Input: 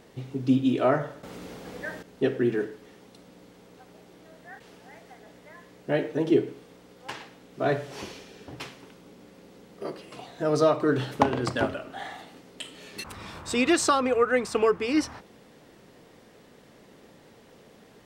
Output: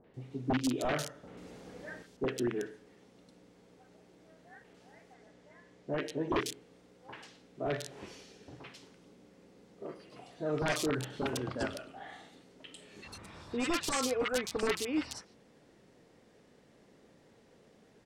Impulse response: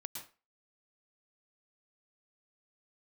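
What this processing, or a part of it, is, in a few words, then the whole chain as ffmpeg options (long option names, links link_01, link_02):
overflowing digital effects unit: -filter_complex "[0:a]aeval=exprs='(mod(5.31*val(0)+1,2)-1)/5.31':channel_layout=same,lowpass=9500,asettb=1/sr,asplit=3[link_01][link_02][link_03];[link_01]atrim=end=5.004[link_04];[link_02]atrim=start=5:end=6.22,asetpts=PTS-STARTPTS,afade=type=in:duration=0.004:curve=qsin,afade=type=out:start_time=1.216:duration=0.004:curve=qsin,lowpass=9000[link_05];[link_03]atrim=start=6.216[link_06];[link_04][link_05]acrossfade=duration=0.004:curve1=hsin:curve2=qsin[link_07];[link_07][link_06]acrossfade=duration=0.004:curve1=qsin:curve2=hsin,acrossover=split=1100|3300[link_08][link_09][link_10];[link_09]adelay=40[link_11];[link_10]adelay=140[link_12];[link_08][link_11][link_12]amix=inputs=3:normalize=0,volume=-8dB"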